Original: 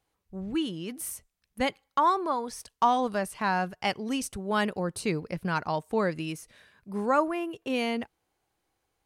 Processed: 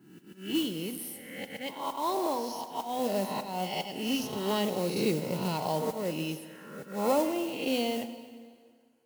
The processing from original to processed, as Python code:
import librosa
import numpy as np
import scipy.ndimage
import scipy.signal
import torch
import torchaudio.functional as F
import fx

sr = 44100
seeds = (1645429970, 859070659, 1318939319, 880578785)

y = fx.spec_swells(x, sr, rise_s=1.01)
y = scipy.signal.sosfilt(scipy.signal.butter(4, 110.0, 'highpass', fs=sr, output='sos'), y)
y = fx.auto_swell(y, sr, attack_ms=228.0)
y = fx.notch_comb(y, sr, f0_hz=1200.0)
y = fx.env_phaser(y, sr, low_hz=540.0, high_hz=1600.0, full_db=-29.5)
y = fx.mod_noise(y, sr, seeds[0], snr_db=16)
y = fx.rev_plate(y, sr, seeds[1], rt60_s=2.0, hf_ratio=0.85, predelay_ms=0, drr_db=9.5)